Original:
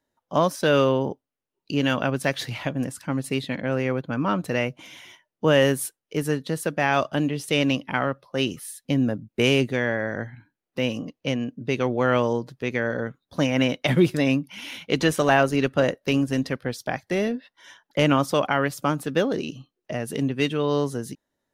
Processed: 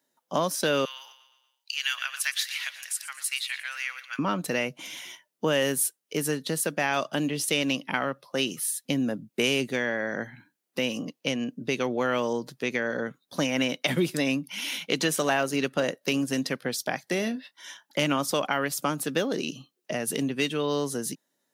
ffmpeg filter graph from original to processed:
ffmpeg -i in.wav -filter_complex "[0:a]asettb=1/sr,asplit=3[link_01][link_02][link_03];[link_01]atrim=end=0.854[link_04];[link_02]atrim=start=0.85:end=4.19,asetpts=PTS-STARTPTS,afade=type=in:duration=0.004:curve=qsin,afade=type=out:start_time=3.336:duration=0.004:curve=qsin,highpass=frequency=1500:width=0.5412,highpass=frequency=1500:width=1.3066,aecho=1:1:117|234|351|468|585:0.188|0.0979|0.0509|0.0265|0.0138,atrim=end_sample=147294[link_05];[link_03]atrim=start=4.186[link_06];[link_04][link_05]acrossfade=duration=0.004:curve1=hsin:curve2=qsin[link_07];[link_07][link_06]acrossfade=duration=0.004:curve1=qsin:curve2=hsin,asettb=1/sr,asplit=3[link_08][link_09][link_10];[link_08]atrim=end=17.194[link_11];[link_09]atrim=start=17.19:end=18.07,asetpts=PTS-STARTPTS,afade=type=in:duration=0.004:curve=qsin,afade=type=out:start_time=0.876:duration=0.004:curve=qsin,equalizer=frequency=460:width_type=o:width=0.25:gain=-8,asplit=2[link_12][link_13];[link_13]adelay=27,volume=-14dB[link_14];[link_12][link_14]amix=inputs=2:normalize=0,atrim=end_sample=38808[link_15];[link_10]atrim=start=18.066[link_16];[link_11][link_15]acrossfade=duration=0.004:curve1=hsin:curve2=qsin[link_17];[link_17][link_16]acrossfade=duration=0.004:curve1=qsin:curve2=hsin,highpass=frequency=150:width=0.5412,highpass=frequency=150:width=1.3066,highshelf=frequency=3400:gain=11,acompressor=threshold=-26dB:ratio=2" out.wav

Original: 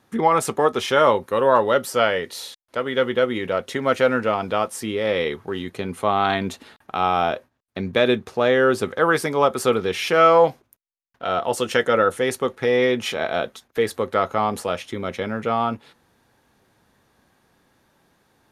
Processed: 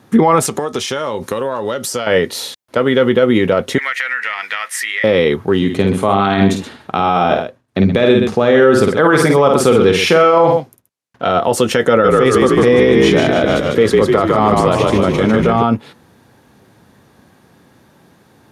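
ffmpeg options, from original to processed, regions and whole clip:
ffmpeg -i in.wav -filter_complex "[0:a]asettb=1/sr,asplit=3[link_01][link_02][link_03];[link_01]atrim=end=0.464[link_04];[link_02]atrim=start=0.46:end=2.07,asetpts=PTS-STARTPTS,afade=type=in:duration=0.004:curve=qsin,afade=type=out:start_time=1.606:duration=0.004:curve=qsin,equalizer=frequency=6500:width_type=o:width=1.9:gain=11.5,acompressor=threshold=-28dB:ratio=10:attack=3.2:release=140:knee=1:detection=peak[link_05];[link_03]atrim=start=2.066[link_06];[link_04][link_05]acrossfade=duration=0.004:curve1=hsin:curve2=qsin[link_07];[link_07][link_06]acrossfade=duration=0.004:curve1=qsin:curve2=hsin,asettb=1/sr,asplit=3[link_08][link_09][link_10];[link_08]atrim=end=3.784[link_11];[link_09]atrim=start=3.78:end=5.04,asetpts=PTS-STARTPTS,afade=type=in:duration=0.004:curve=qsin,afade=type=out:start_time=1.256:duration=0.004:curve=qsin,highpass=frequency=1900:width_type=q:width=8.4,acompressor=threshold=-26dB:ratio=5:attack=3.2:release=140:knee=1:detection=peak[link_12];[link_10]atrim=start=5.036[link_13];[link_11][link_12]acrossfade=duration=0.004:curve1=hsin:curve2=qsin[link_14];[link_14][link_13]acrossfade=duration=0.004:curve1=qsin:curve2=hsin,asettb=1/sr,asplit=3[link_15][link_16][link_17];[link_15]atrim=end=5.574[link_18];[link_16]atrim=start=5.57:end=11.31,asetpts=PTS-STARTPTS,afade=type=in:duration=0.004:curve=qsin,afade=type=out:start_time=5.736:duration=0.004:curve=qsin,lowpass=11000,aecho=1:1:51|126:0.473|0.251,atrim=end_sample=253134[link_19];[link_17]atrim=start=11.306[link_20];[link_18][link_19]acrossfade=duration=0.004:curve1=hsin:curve2=qsin[link_21];[link_21][link_20]acrossfade=duration=0.004:curve1=qsin:curve2=hsin,asettb=1/sr,asplit=3[link_22][link_23][link_24];[link_22]atrim=end=11.894[link_25];[link_23]atrim=start=11.89:end=15.63,asetpts=PTS-STARTPTS,afade=type=in:duration=0.004:curve=qsin,afade=type=out:start_time=3.736:duration=0.004:curve=qsin,acrossover=split=9200[link_26][link_27];[link_27]acompressor=threshold=-58dB:ratio=4:attack=1:release=60[link_28];[link_26][link_28]amix=inputs=2:normalize=0,asplit=9[link_29][link_30][link_31][link_32][link_33][link_34][link_35][link_36][link_37];[link_30]adelay=150,afreqshift=-45,volume=-4dB[link_38];[link_31]adelay=300,afreqshift=-90,volume=-8.6dB[link_39];[link_32]adelay=450,afreqshift=-135,volume=-13.2dB[link_40];[link_33]adelay=600,afreqshift=-180,volume=-17.7dB[link_41];[link_34]adelay=750,afreqshift=-225,volume=-22.3dB[link_42];[link_35]adelay=900,afreqshift=-270,volume=-26.9dB[link_43];[link_36]adelay=1050,afreqshift=-315,volume=-31.5dB[link_44];[link_37]adelay=1200,afreqshift=-360,volume=-36.1dB[link_45];[link_29][link_38][link_39][link_40][link_41][link_42][link_43][link_44][link_45]amix=inputs=9:normalize=0,atrim=end_sample=164934[link_46];[link_24]atrim=start=15.626[link_47];[link_25][link_46]acrossfade=duration=0.004:curve1=hsin:curve2=qsin[link_48];[link_48][link_47]acrossfade=duration=0.004:curve1=qsin:curve2=hsin,highpass=92,lowshelf=frequency=400:gain=8.5,alimiter=level_in=10.5dB:limit=-1dB:release=50:level=0:latency=1,volume=-1dB" out.wav

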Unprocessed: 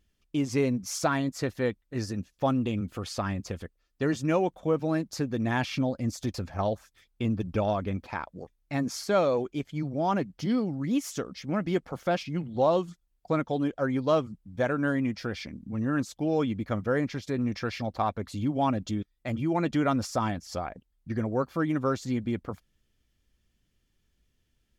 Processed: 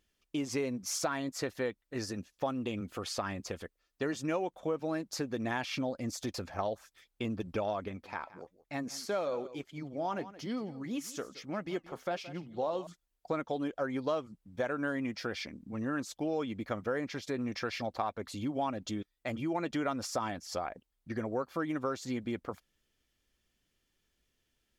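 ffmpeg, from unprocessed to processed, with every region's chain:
ffmpeg -i in.wav -filter_complex "[0:a]asettb=1/sr,asplit=3[link_01][link_02][link_03];[link_01]atrim=end=7.884[link_04];[link_02]atrim=start=7.88:end=12.87,asetpts=PTS-STARTPTS,afade=type=in:duration=0.004:curve=qsin,afade=type=out:start_time=4.986:duration=0.004:curve=qsin,aecho=1:1:172:0.126,atrim=end_sample=220059,flanger=delay=1:depth=4.9:regen=-77:speed=1.1:shape=sinusoidal[link_05];[link_03]atrim=start=12.866[link_06];[link_04][link_05]acrossfade=duration=0.004:curve1=hsin:curve2=qsin[link_07];[link_07][link_06]acrossfade=duration=0.004:curve1=qsin:curve2=hsin,bass=frequency=250:gain=-10,treble=frequency=4000:gain=0,acompressor=threshold=-31dB:ratio=3" out.wav

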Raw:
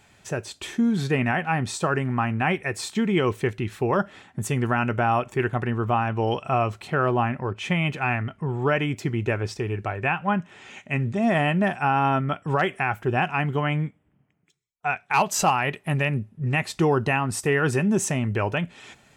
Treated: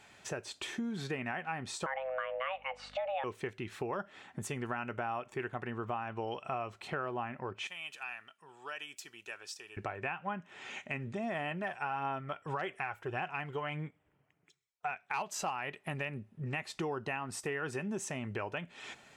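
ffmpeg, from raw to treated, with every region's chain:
ffmpeg -i in.wav -filter_complex "[0:a]asettb=1/sr,asplit=3[link_01][link_02][link_03];[link_01]atrim=end=1.864[link_04];[link_02]atrim=start=1.86:end=3.24,asetpts=PTS-STARTPTS,afade=type=in:duration=0.004:curve=qsin,afade=type=out:start_time=1.376:duration=0.004:curve=qsin,lowpass=2500,afreqshift=390,aeval=exprs='val(0)+0.00447*(sin(2*PI*50*n/s)+sin(2*PI*2*50*n/s)/2+sin(2*PI*3*50*n/s)/3+sin(2*PI*4*50*n/s)/4+sin(2*PI*5*50*n/s)/5)':channel_layout=same[link_05];[link_03]atrim=start=3.236[link_06];[link_04][link_05]acrossfade=duration=0.004:curve1=hsin:curve2=qsin[link_07];[link_07][link_06]acrossfade=duration=0.004:curve1=qsin:curve2=hsin,asettb=1/sr,asplit=3[link_08][link_09][link_10];[link_08]atrim=end=7.674[link_11];[link_09]atrim=start=7.67:end=9.77,asetpts=PTS-STARTPTS,afade=type=in:duration=0.004:curve=qsin,afade=type=out:start_time=2.096:duration=0.004:curve=qsin,aderivative,bandreject=frequency=2100:width=6.5[link_12];[link_10]atrim=start=9.766[link_13];[link_11][link_12]acrossfade=duration=0.004:curve1=hsin:curve2=qsin[link_14];[link_14][link_13]acrossfade=duration=0.004:curve1=qsin:curve2=hsin,asettb=1/sr,asplit=3[link_15][link_16][link_17];[link_15]atrim=end=11.514[link_18];[link_16]atrim=start=11.51:end=14.91,asetpts=PTS-STARTPTS,afade=type=in:duration=0.004:curve=qsin,afade=type=out:start_time=3.396:duration=0.004:curve=qsin,equalizer=frequency=220:width=2.9:gain=-8,aphaser=in_gain=1:out_gain=1:delay=2.2:decay=0.31:speed=1.7:type=sinusoidal[link_19];[link_17]atrim=start=14.906[link_20];[link_18][link_19]acrossfade=duration=0.004:curve1=hsin:curve2=qsin[link_21];[link_21][link_20]acrossfade=duration=0.004:curve1=qsin:curve2=hsin,lowshelf=frequency=200:gain=-12,acompressor=threshold=-38dB:ratio=3,highshelf=frequency=9300:gain=-9" out.wav

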